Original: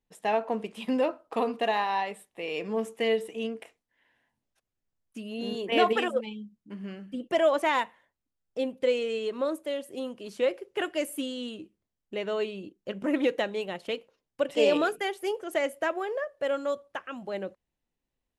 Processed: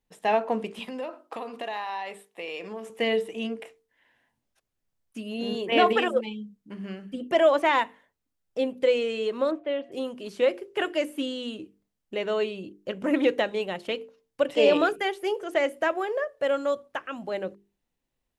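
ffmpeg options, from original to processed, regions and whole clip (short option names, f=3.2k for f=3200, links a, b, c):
-filter_complex "[0:a]asettb=1/sr,asplit=3[a][b][c];[a]atrim=end=0.794[d];[b]atrim=start=0.79:end=2.9,asetpts=PTS-STARTPTS,afade=t=in:d=0.004:c=qsin,afade=t=out:st=2.106:d=0.004:c=qsin,acompressor=threshold=-32dB:ratio=5:attack=3.2:release=140:knee=1:detection=peak,highpass=f=380:p=1[e];[c]atrim=start=2.896[f];[d][e]acrossfade=d=0.004:c1=hsin:c2=qsin[g];[g][f]acrossfade=d=0.004:c1=qsin:c2=hsin,asettb=1/sr,asplit=3[h][i][j];[h]atrim=end=9.514[k];[i]atrim=start=9.51:end=9.92,asetpts=PTS-STARTPTS,afade=t=in:d=0.004:c=qsin,afade=t=out:st=0.406:d=0.004:c=qsin,lowpass=f=3k:w=0.5412,lowpass=f=3k:w=1.3066,aeval=exprs='val(0)+0.001*sin(2*PI*690*n/s)':c=same[l];[j]atrim=start=9.916[m];[k][l]acrossfade=d=0.004:c1=hsin:c2=qsin[n];[n][m]acrossfade=d=0.004:c1=qsin:c2=hsin,bandreject=f=50:t=h:w=6,bandreject=f=100:t=h:w=6,bandreject=f=150:t=h:w=6,bandreject=f=200:t=h:w=6,bandreject=f=250:t=h:w=6,bandreject=f=300:t=h:w=6,bandreject=f=350:t=h:w=6,bandreject=f=400:t=h:w=6,bandreject=f=450:t=h:w=6,acrossover=split=4900[o][p];[p]acompressor=threshold=-55dB:ratio=4:attack=1:release=60[q];[o][q]amix=inputs=2:normalize=0,volume=3.5dB"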